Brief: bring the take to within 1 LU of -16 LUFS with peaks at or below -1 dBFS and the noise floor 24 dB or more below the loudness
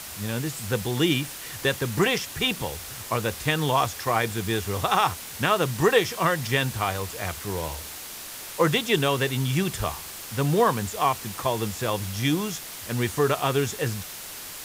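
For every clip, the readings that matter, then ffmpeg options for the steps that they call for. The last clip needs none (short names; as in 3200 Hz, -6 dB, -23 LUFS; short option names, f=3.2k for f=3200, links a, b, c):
noise floor -39 dBFS; noise floor target -50 dBFS; loudness -25.5 LUFS; peak -6.5 dBFS; loudness target -16.0 LUFS
-> -af "afftdn=nr=11:nf=-39"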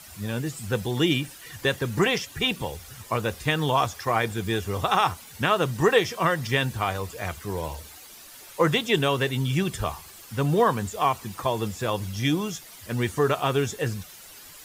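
noise floor -46 dBFS; noise floor target -50 dBFS
-> -af "afftdn=nr=6:nf=-46"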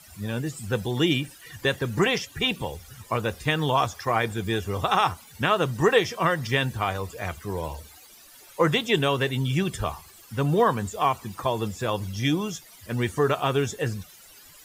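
noise floor -50 dBFS; loudness -25.5 LUFS; peak -7.0 dBFS; loudness target -16.0 LUFS
-> -af "volume=9.5dB,alimiter=limit=-1dB:level=0:latency=1"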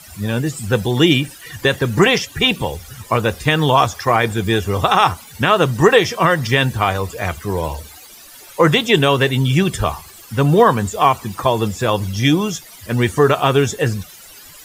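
loudness -16.5 LUFS; peak -1.0 dBFS; noise floor -41 dBFS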